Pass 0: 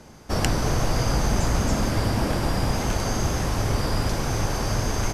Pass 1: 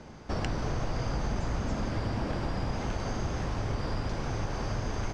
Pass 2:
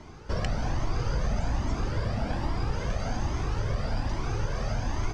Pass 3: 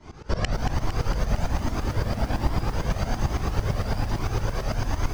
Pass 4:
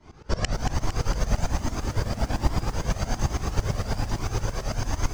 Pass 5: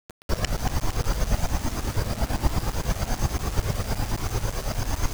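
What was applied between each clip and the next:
downward compressor 2 to 1, threshold −34 dBFS, peak gain reduction 10 dB; high-frequency loss of the air 120 metres
flanger whose copies keep moving one way rising 1.2 Hz; level +5.5 dB
shaped tremolo saw up 8.9 Hz, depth 90%; feedback echo at a low word length 229 ms, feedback 80%, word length 8 bits, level −10 dB; level +7 dB
dynamic equaliser 7,000 Hz, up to +8 dB, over −59 dBFS, Q 1.5; expander for the loud parts 1.5 to 1, over −31 dBFS; level +1.5 dB
bit-depth reduction 6 bits, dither none

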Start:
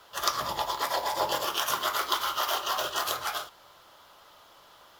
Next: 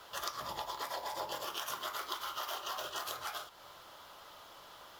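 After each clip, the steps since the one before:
downward compressor 3 to 1, threshold −42 dBFS, peak gain reduction 15.5 dB
level +1 dB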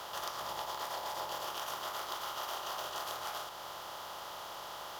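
compressor on every frequency bin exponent 0.4
parametric band 780 Hz +5 dB 0.66 octaves
level −6.5 dB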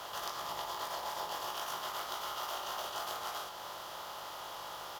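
double-tracking delay 19 ms −5 dB
level −1 dB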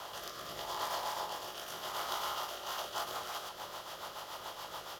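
rotating-speaker cabinet horn 0.8 Hz, later 7 Hz, at 0:02.34
level +3 dB

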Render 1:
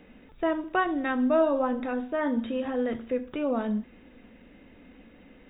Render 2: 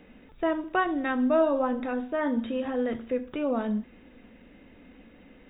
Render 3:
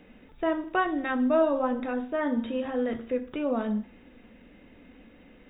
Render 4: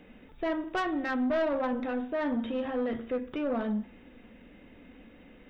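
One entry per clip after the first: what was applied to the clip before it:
no processing that can be heard
hum removal 66.63 Hz, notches 31
soft clipping −24 dBFS, distortion −11 dB

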